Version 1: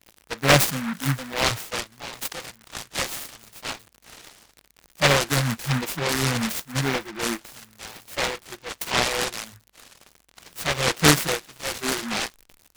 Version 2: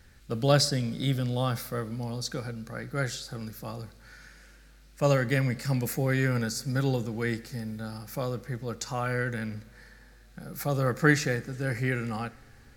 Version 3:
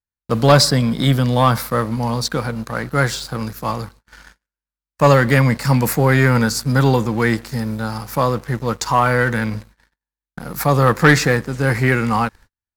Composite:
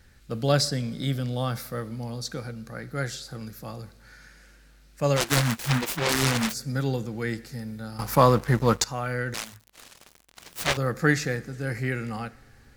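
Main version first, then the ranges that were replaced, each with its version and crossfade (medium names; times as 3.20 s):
2
5.18–6.52 s: from 1, crossfade 0.06 s
7.99–8.84 s: from 3
9.34–10.77 s: from 1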